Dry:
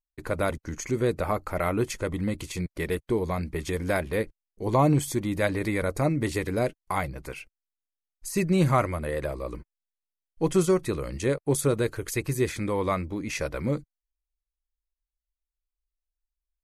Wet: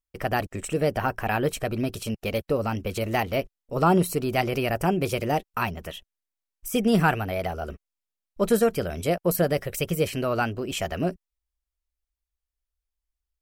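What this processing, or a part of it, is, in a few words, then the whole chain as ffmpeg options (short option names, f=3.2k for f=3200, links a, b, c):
nightcore: -af "asetrate=54684,aresample=44100,volume=1.5dB"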